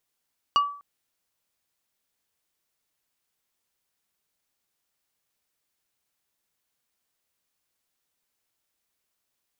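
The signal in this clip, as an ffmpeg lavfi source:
ffmpeg -f lavfi -i "aevalsrc='0.188*pow(10,-3*t/0.46)*sin(2*PI*1150*t)+0.0794*pow(10,-3*t/0.153)*sin(2*PI*2875*t)+0.0335*pow(10,-3*t/0.087)*sin(2*PI*4600*t)+0.0141*pow(10,-3*t/0.067)*sin(2*PI*5750*t)+0.00596*pow(10,-3*t/0.049)*sin(2*PI*7475*t)':duration=0.25:sample_rate=44100" out.wav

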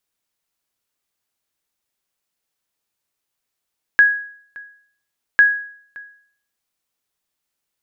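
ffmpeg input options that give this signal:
ffmpeg -f lavfi -i "aevalsrc='0.596*(sin(2*PI*1660*mod(t,1.4))*exp(-6.91*mod(t,1.4)/0.57)+0.0596*sin(2*PI*1660*max(mod(t,1.4)-0.57,0))*exp(-6.91*max(mod(t,1.4)-0.57,0)/0.57))':duration=2.8:sample_rate=44100" out.wav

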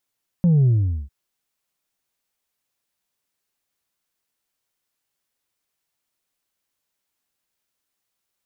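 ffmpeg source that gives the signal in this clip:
ffmpeg -f lavfi -i "aevalsrc='0.224*clip((0.65-t)/0.43,0,1)*tanh(1.26*sin(2*PI*180*0.65/log(65/180)*(exp(log(65/180)*t/0.65)-1)))/tanh(1.26)':duration=0.65:sample_rate=44100" out.wav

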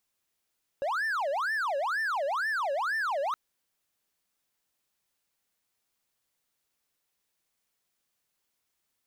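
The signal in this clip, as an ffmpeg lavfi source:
ffmpeg -f lavfi -i "aevalsrc='0.0562*(1-4*abs(mod((1168.5*t-621.5/(2*PI*2.1)*sin(2*PI*2.1*t))+0.25,1)-0.5))':duration=2.52:sample_rate=44100" out.wav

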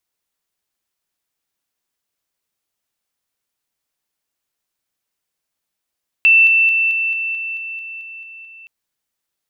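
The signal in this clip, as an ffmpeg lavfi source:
ffmpeg -f lavfi -i "aevalsrc='pow(10,(-7-3*floor(t/0.22))/20)*sin(2*PI*2670*t)':duration=2.42:sample_rate=44100" out.wav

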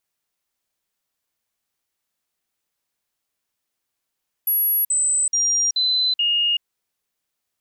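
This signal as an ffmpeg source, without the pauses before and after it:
ffmpeg -f lavfi -i "aevalsrc='0.15*clip(min(mod(t,0.43),0.38-mod(t,0.43))/0.005,0,1)*sin(2*PI*11400*pow(2,-floor(t/0.43)/2)*mod(t,0.43))':duration=2.15:sample_rate=44100" out.wav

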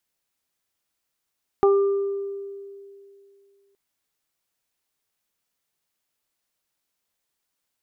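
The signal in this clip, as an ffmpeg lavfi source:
ffmpeg -f lavfi -i "aevalsrc='0.224*pow(10,-3*t/2.57)*sin(2*PI*397*t)+0.126*pow(10,-3*t/0.23)*sin(2*PI*794*t)+0.0631*pow(10,-3*t/1.1)*sin(2*PI*1191*t)':duration=2.12:sample_rate=44100" out.wav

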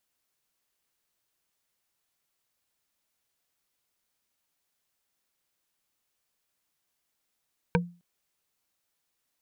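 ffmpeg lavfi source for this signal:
ffmpeg -f lavfi -i "aevalsrc='0.112*pow(10,-3*t/0.34)*sin(2*PI*174*t)+0.106*pow(10,-3*t/0.101)*sin(2*PI*479.7*t)+0.1*pow(10,-3*t/0.045)*sin(2*PI*940.3*t)+0.0944*pow(10,-3*t/0.025)*sin(2*PI*1554.3*t)+0.0891*pow(10,-3*t/0.015)*sin(2*PI*2321.2*t)':duration=0.26:sample_rate=44100" out.wav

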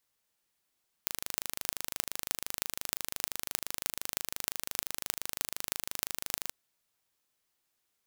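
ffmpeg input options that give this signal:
ffmpeg -f lavfi -i "aevalsrc='0.841*eq(mod(n,1709),0)*(0.5+0.5*eq(mod(n,13672),0))':duration=5.43:sample_rate=44100" out.wav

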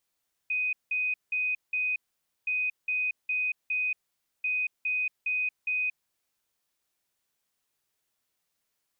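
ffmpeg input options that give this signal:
ffmpeg -f lavfi -i "aevalsrc='0.0531*sin(2*PI*2500*t)*clip(min(mod(mod(t,1.97),0.41),0.23-mod(mod(t,1.97),0.41))/0.005,0,1)*lt(mod(t,1.97),1.64)':duration=5.91:sample_rate=44100" out.wav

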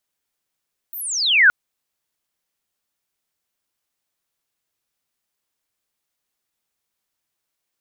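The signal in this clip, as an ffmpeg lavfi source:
ffmpeg -f lavfi -i "aevalsrc='pow(10,(-29+22*t/0.57)/20)*sin(2*PI*16000*0.57/log(1400/16000)*(exp(log(1400/16000)*t/0.57)-1))':duration=0.57:sample_rate=44100" out.wav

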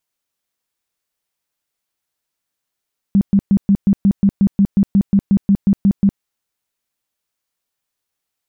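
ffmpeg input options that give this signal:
ffmpeg -f lavfi -i "aevalsrc='0.398*sin(2*PI*198*mod(t,0.18))*lt(mod(t,0.18),12/198)':duration=3.06:sample_rate=44100" out.wav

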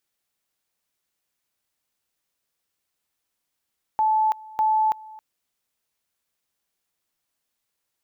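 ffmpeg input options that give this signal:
ffmpeg -f lavfi -i "aevalsrc='pow(10,(-17-22*gte(mod(t,0.6),0.33))/20)*sin(2*PI*869*t)':duration=1.2:sample_rate=44100" out.wav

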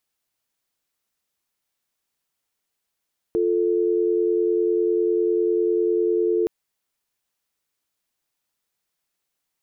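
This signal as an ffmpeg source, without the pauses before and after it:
ffmpeg -f lavfi -i "aevalsrc='0.0944*(sin(2*PI*350*t)+sin(2*PI*440*t))':duration=3.12:sample_rate=44100" out.wav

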